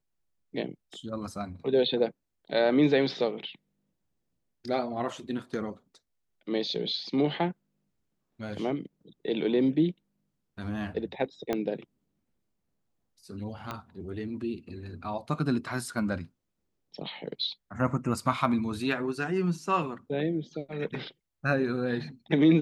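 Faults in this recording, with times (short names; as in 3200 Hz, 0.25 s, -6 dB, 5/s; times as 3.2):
11.53 pop -15 dBFS
13.71 pop -21 dBFS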